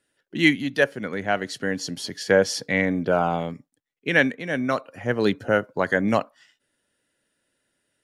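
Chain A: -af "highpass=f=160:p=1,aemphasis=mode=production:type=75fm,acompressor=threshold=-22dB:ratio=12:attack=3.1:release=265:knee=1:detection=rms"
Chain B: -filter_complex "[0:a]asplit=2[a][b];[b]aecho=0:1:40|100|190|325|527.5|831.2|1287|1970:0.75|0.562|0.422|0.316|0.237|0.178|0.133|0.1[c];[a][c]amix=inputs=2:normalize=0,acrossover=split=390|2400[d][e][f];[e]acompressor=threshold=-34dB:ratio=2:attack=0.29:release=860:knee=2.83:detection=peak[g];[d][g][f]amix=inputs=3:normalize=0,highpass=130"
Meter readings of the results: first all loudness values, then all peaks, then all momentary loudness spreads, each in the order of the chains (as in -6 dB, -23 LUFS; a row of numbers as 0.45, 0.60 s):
-30.5, -25.0 LUFS; -13.0, -6.5 dBFS; 7, 15 LU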